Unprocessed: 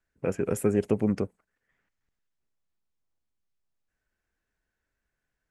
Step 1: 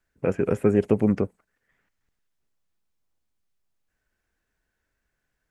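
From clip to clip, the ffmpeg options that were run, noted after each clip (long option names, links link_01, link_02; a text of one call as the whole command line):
ffmpeg -i in.wav -filter_complex "[0:a]acrossover=split=3100[link_01][link_02];[link_02]acompressor=threshold=-57dB:ratio=4:attack=1:release=60[link_03];[link_01][link_03]amix=inputs=2:normalize=0,volume=4.5dB" out.wav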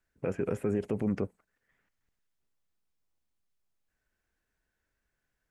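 ffmpeg -i in.wav -af "alimiter=limit=-16dB:level=0:latency=1:release=40,volume=-4dB" out.wav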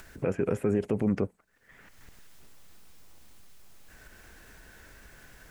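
ffmpeg -i in.wav -af "acompressor=mode=upward:threshold=-33dB:ratio=2.5,volume=3.5dB" out.wav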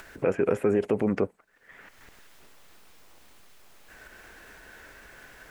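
ffmpeg -i in.wav -af "bass=frequency=250:gain=-10,treble=frequency=4000:gain=-6,volume=6dB" out.wav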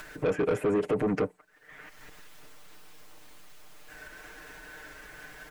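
ffmpeg -i in.wav -af "aecho=1:1:6.6:0.82,asoftclip=type=tanh:threshold=-20.5dB" out.wav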